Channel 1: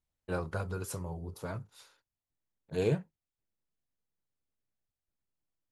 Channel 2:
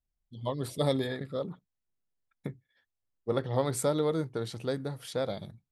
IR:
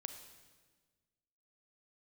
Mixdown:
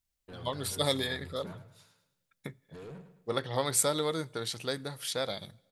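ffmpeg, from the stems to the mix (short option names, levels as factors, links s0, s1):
-filter_complex "[0:a]alimiter=level_in=1.58:limit=0.0631:level=0:latency=1:release=22,volume=0.631,asoftclip=type=tanh:threshold=0.0119,volume=0.531,asplit=3[s0][s1][s2];[s1]volume=0.2[s3];[s2]volume=0.355[s4];[1:a]tiltshelf=f=1100:g=-7.5,volume=1.12,asplit=2[s5][s6];[s6]volume=0.15[s7];[2:a]atrim=start_sample=2205[s8];[s3][s7]amix=inputs=2:normalize=0[s9];[s9][s8]afir=irnorm=-1:irlink=0[s10];[s4]aecho=0:1:106|212|318|424|530:1|0.38|0.144|0.0549|0.0209[s11];[s0][s5][s10][s11]amix=inputs=4:normalize=0"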